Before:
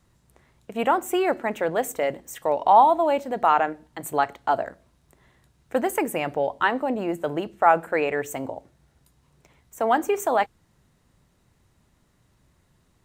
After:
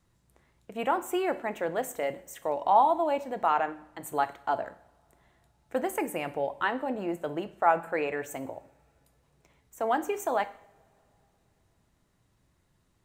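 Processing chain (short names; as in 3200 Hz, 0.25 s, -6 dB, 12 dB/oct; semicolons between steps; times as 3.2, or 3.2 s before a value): two-slope reverb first 0.59 s, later 3.7 s, from -27 dB, DRR 11.5 dB; gain -6.5 dB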